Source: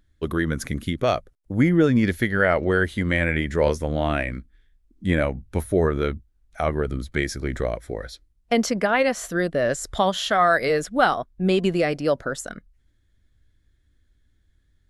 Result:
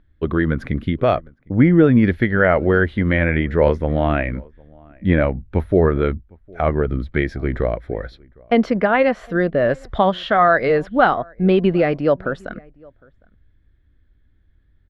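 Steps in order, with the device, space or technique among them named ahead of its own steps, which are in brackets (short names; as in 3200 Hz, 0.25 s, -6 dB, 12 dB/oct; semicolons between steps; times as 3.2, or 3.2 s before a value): shout across a valley (air absorption 400 m; outdoor echo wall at 130 m, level -27 dB); gain +6 dB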